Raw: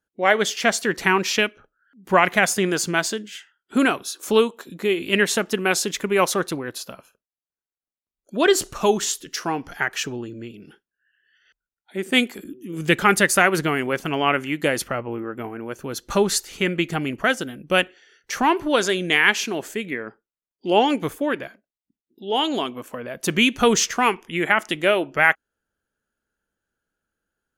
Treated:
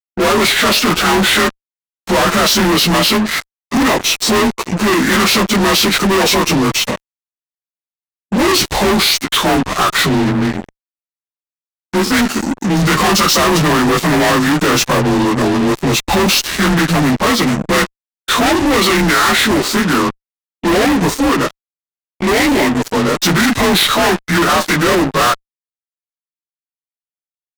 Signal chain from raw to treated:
partials spread apart or drawn together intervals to 90%
fuzz pedal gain 43 dB, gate −42 dBFS
formants moved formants −3 semitones
level +2.5 dB

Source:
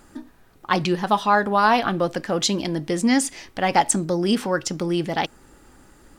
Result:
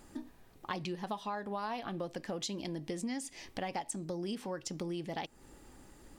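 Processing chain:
parametric band 1,400 Hz −6.5 dB 0.49 octaves
downward compressor 6 to 1, threshold −31 dBFS, peak gain reduction 17 dB
level −5 dB

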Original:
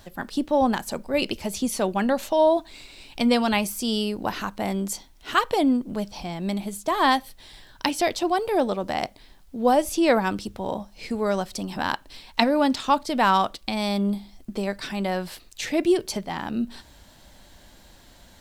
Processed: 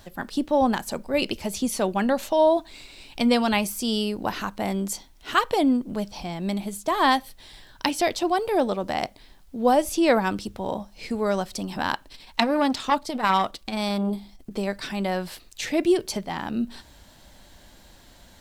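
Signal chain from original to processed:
0:12.07–0:14.51: saturating transformer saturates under 1,400 Hz

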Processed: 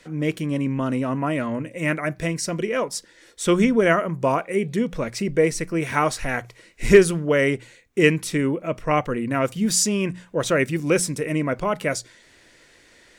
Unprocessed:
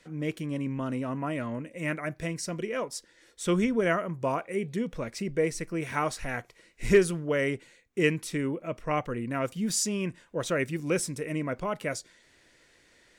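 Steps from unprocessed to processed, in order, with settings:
mains-hum notches 60/120/180 Hz
level +8 dB

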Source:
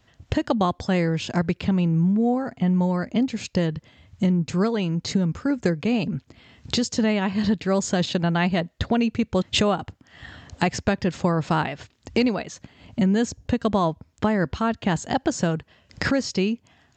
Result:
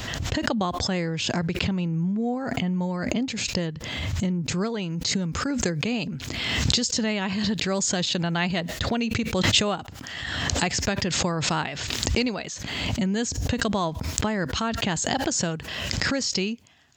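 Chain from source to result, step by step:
high-shelf EQ 2,300 Hz +6 dB, from 0:04.90 +11 dB
background raised ahead of every attack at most 28 dB per second
level −5.5 dB

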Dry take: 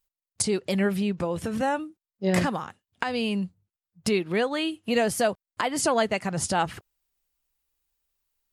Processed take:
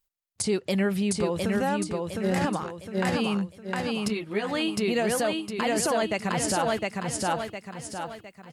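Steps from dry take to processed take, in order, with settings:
repeating echo 709 ms, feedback 41%, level −3 dB
brickwall limiter −16 dBFS, peak gain reduction 6 dB
0:04.08–0:04.49: string-ensemble chorus

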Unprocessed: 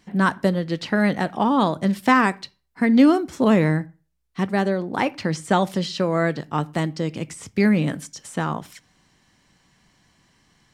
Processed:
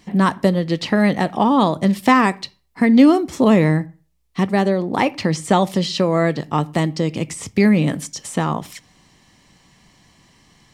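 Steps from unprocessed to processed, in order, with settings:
parametric band 1,500 Hz −9.5 dB 0.22 octaves
in parallel at −1 dB: downward compressor, threshold −27 dBFS, peak gain reduction 15.5 dB
on the sum: level +2 dB

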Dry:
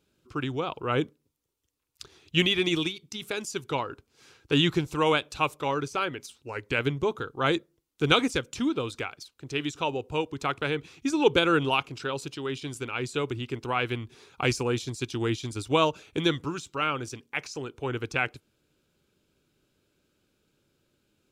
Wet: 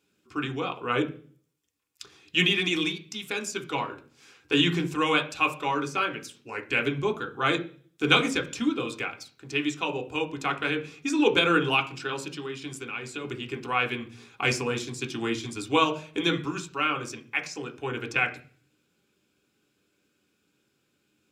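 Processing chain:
0:12.37–0:13.25: downward compressor 6 to 1, threshold −33 dBFS, peak gain reduction 9 dB
convolution reverb RT60 0.40 s, pre-delay 3 ms, DRR 3 dB

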